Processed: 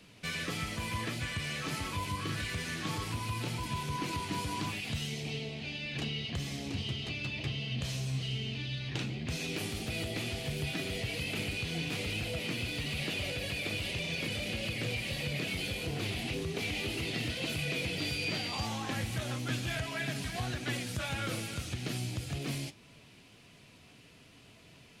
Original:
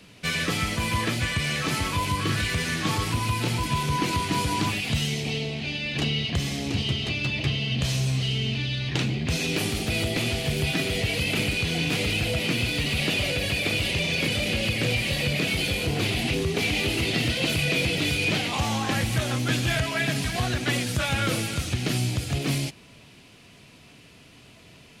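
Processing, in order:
in parallel at −1 dB: downward compressor, threshold −35 dBFS, peak gain reduction 14 dB
0:17.97–0:18.65: on the sum: steady tone 4,700 Hz −28 dBFS
flanger 1.7 Hz, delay 5.8 ms, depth 5.8 ms, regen +80%
level −7.5 dB

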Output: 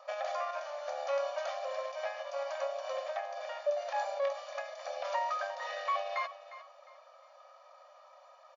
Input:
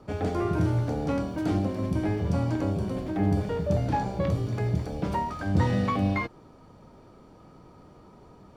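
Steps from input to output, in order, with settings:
comb filter 1.7 ms, depth 48%
speech leveller 0.5 s
brickwall limiter −21 dBFS, peak gain reduction 7.5 dB
linear-phase brick-wall band-pass 520–7,100 Hz
repeating echo 355 ms, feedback 29%, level −15 dB

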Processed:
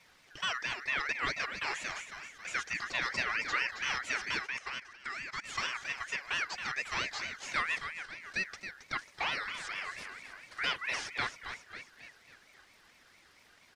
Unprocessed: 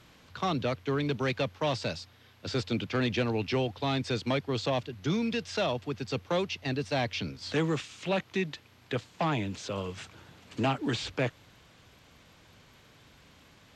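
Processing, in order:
0:07.78–0:08.21: guitar amp tone stack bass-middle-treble 6-0-2
echo with shifted repeats 272 ms, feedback 51%, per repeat −35 Hz, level −9 dB
0:04.46–0:05.44: output level in coarse steps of 16 dB
comb filter 2.5 ms, depth 87%
ring modulator whose carrier an LFO sweeps 1,900 Hz, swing 20%, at 4.4 Hz
level −4.5 dB

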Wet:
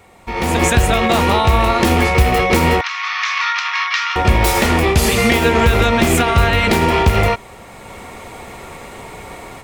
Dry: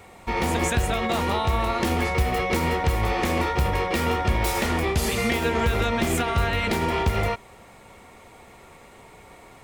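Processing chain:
loose part that buzzes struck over −31 dBFS, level −26 dBFS
0:02.81–0:04.16: Chebyshev band-pass filter 1,100–6,000 Hz, order 4
automatic gain control gain up to 14.5 dB

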